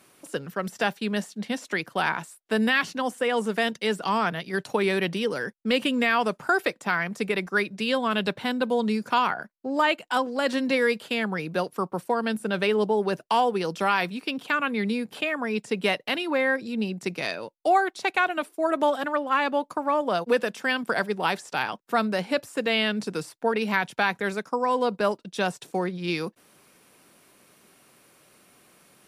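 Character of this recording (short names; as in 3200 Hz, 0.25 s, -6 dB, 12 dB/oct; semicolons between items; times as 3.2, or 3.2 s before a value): noise floor -61 dBFS; spectral tilt -2.5 dB/oct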